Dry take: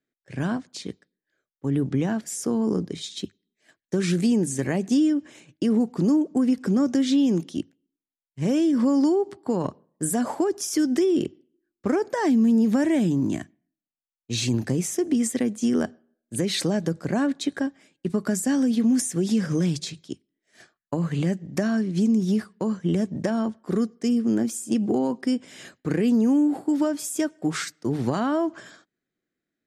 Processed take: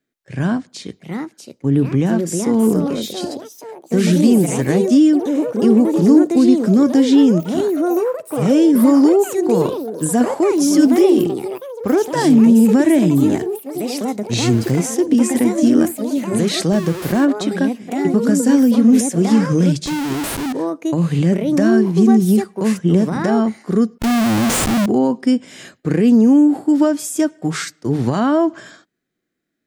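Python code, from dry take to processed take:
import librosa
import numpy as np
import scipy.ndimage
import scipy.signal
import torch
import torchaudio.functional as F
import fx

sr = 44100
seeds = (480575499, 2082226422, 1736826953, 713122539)

y = fx.schmitt(x, sr, flips_db=-34.5, at=(23.98, 24.86))
y = fx.echo_pitch(y, sr, ms=795, semitones=4, count=3, db_per_echo=-6.0)
y = fx.hpss(y, sr, part='harmonic', gain_db=6)
y = y * librosa.db_to_amplitude(3.0)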